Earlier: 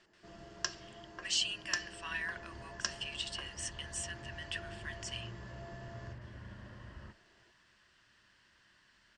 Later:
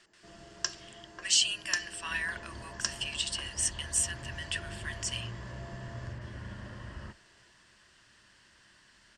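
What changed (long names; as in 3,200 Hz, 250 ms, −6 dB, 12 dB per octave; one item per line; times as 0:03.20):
speech +4.0 dB
second sound +6.5 dB
master: remove high-frequency loss of the air 80 metres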